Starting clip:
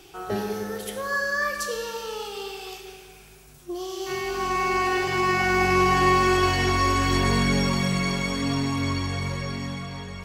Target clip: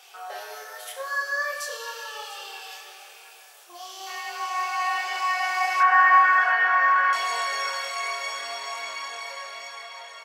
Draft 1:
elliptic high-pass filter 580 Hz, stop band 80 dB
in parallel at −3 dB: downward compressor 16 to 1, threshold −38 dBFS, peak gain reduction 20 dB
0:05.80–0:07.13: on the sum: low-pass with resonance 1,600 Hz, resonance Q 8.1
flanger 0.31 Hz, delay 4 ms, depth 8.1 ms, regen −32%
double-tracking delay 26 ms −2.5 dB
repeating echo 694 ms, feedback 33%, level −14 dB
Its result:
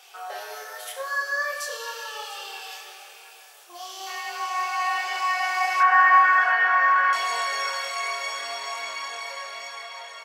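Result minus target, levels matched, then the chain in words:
downward compressor: peak gain reduction −7.5 dB
elliptic high-pass filter 580 Hz, stop band 80 dB
in parallel at −3 dB: downward compressor 16 to 1, threshold −46 dBFS, peak gain reduction 27.5 dB
0:05.80–0:07.13: on the sum: low-pass with resonance 1,600 Hz, resonance Q 8.1
flanger 0.31 Hz, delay 4 ms, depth 8.1 ms, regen −32%
double-tracking delay 26 ms −2.5 dB
repeating echo 694 ms, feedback 33%, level −14 dB

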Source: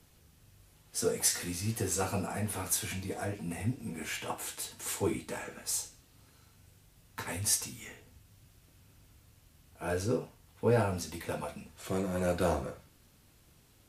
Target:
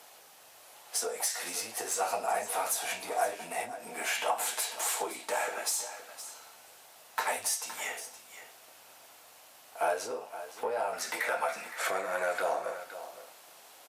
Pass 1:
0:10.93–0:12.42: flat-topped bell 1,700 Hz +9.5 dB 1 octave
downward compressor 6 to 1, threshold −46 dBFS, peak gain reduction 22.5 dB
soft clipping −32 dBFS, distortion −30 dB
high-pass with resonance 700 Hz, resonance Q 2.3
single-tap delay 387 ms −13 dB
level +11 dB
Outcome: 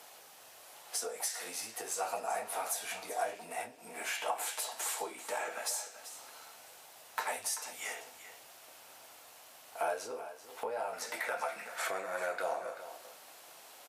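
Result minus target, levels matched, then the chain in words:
downward compressor: peak gain reduction +5.5 dB; echo 129 ms early
0:10.93–0:12.42: flat-topped bell 1,700 Hz +9.5 dB 1 octave
downward compressor 6 to 1, threshold −39.5 dBFS, peak gain reduction 17 dB
soft clipping −32 dBFS, distortion −22 dB
high-pass with resonance 700 Hz, resonance Q 2.3
single-tap delay 516 ms −13 dB
level +11 dB

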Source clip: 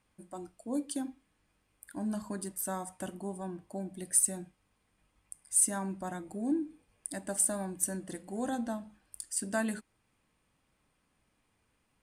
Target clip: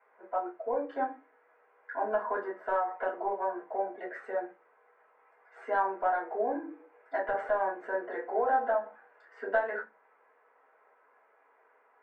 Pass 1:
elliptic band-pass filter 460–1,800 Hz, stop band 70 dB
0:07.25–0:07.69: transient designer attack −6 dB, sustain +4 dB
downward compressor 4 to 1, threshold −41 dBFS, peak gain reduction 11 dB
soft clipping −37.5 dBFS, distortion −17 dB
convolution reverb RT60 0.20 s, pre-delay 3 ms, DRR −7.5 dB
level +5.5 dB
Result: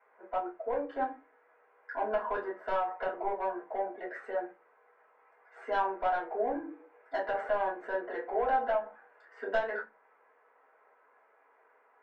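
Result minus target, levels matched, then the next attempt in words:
soft clipping: distortion +15 dB
elliptic band-pass filter 460–1,800 Hz, stop band 70 dB
0:07.25–0:07.69: transient designer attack −6 dB, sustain +4 dB
downward compressor 4 to 1, threshold −41 dBFS, peak gain reduction 11 dB
soft clipping −28 dBFS, distortion −32 dB
convolution reverb RT60 0.20 s, pre-delay 3 ms, DRR −7.5 dB
level +5.5 dB

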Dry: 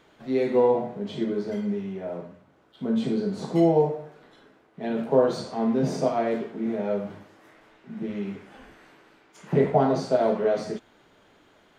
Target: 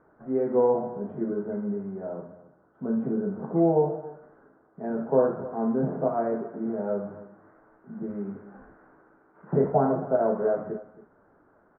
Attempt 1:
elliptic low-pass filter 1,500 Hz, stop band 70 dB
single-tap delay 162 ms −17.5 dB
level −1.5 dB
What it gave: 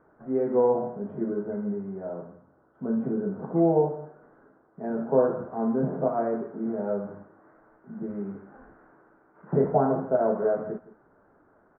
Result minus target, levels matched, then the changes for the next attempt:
echo 110 ms early
change: single-tap delay 272 ms −17.5 dB

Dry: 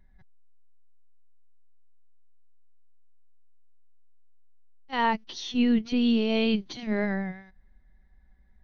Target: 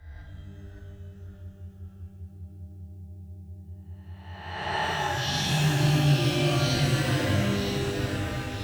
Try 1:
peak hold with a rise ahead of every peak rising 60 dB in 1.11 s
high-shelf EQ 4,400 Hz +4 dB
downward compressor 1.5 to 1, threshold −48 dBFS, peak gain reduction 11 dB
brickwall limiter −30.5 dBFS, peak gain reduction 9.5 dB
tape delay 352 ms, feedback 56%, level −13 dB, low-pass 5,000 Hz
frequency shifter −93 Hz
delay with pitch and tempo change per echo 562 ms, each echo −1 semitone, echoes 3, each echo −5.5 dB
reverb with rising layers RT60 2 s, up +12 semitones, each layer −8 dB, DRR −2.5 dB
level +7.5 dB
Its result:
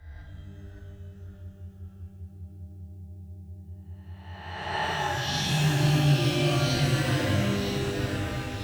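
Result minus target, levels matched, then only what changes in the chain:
downward compressor: peak gain reduction +2.5 dB
change: downward compressor 1.5 to 1, threshold −40 dBFS, peak gain reduction 8 dB

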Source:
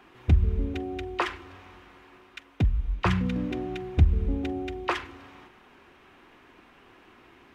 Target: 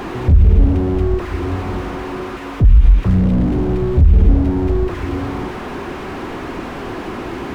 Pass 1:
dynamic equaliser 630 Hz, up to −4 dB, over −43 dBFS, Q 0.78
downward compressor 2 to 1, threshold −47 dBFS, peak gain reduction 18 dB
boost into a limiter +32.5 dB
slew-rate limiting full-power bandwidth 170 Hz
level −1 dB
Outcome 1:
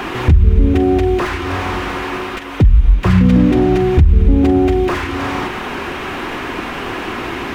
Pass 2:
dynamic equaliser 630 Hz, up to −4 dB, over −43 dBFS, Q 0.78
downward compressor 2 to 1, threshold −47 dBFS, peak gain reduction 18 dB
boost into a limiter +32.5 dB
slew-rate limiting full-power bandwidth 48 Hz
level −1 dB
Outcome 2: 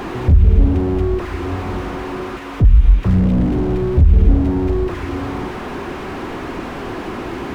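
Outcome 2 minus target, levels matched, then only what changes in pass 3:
downward compressor: peak gain reduction +3 dB
change: downward compressor 2 to 1, threshold −40.5 dBFS, peak gain reduction 15 dB

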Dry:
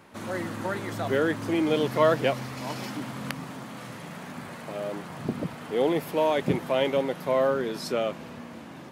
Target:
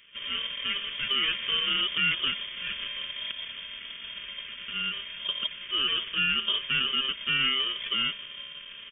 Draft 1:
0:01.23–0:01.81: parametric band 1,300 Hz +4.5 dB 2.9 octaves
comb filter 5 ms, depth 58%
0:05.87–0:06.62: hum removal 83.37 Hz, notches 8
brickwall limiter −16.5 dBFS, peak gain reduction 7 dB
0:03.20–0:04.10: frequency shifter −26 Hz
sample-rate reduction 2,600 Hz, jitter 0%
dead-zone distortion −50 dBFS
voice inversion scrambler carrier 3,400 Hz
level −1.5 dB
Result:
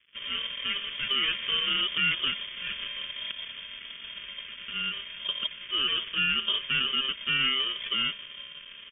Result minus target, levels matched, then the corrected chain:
dead-zone distortion: distortion +11 dB
0:01.23–0:01.81: parametric band 1,300 Hz +4.5 dB 2.9 octaves
comb filter 5 ms, depth 58%
0:05.87–0:06.62: hum removal 83.37 Hz, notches 8
brickwall limiter −16.5 dBFS, peak gain reduction 7 dB
0:03.20–0:04.10: frequency shifter −26 Hz
sample-rate reduction 2,600 Hz, jitter 0%
dead-zone distortion −61 dBFS
voice inversion scrambler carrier 3,400 Hz
level −1.5 dB

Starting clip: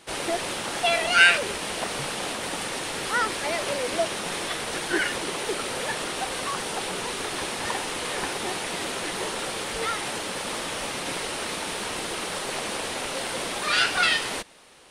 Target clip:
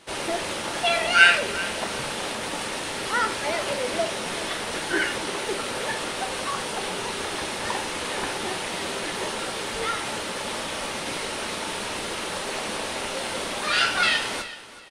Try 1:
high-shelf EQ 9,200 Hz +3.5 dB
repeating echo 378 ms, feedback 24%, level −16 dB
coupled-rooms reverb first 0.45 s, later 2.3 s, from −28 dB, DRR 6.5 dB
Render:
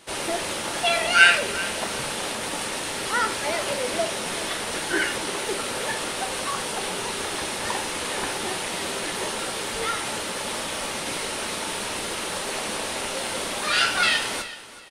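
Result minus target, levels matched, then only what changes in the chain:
8,000 Hz band +3.0 dB
change: high-shelf EQ 9,200 Hz −5.5 dB

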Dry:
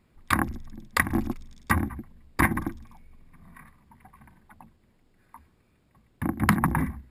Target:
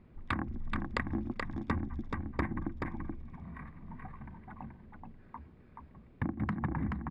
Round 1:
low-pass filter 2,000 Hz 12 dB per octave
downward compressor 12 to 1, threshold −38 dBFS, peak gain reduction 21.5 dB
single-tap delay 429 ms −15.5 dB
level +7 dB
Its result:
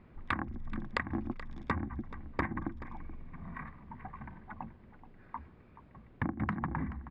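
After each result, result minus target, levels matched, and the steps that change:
echo-to-direct −11.5 dB; 1,000 Hz band +3.0 dB
change: single-tap delay 429 ms −4 dB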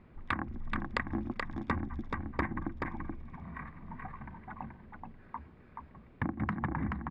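1,000 Hz band +3.0 dB
add after low-pass filter: parametric band 1,400 Hz −6 dB 2.7 octaves

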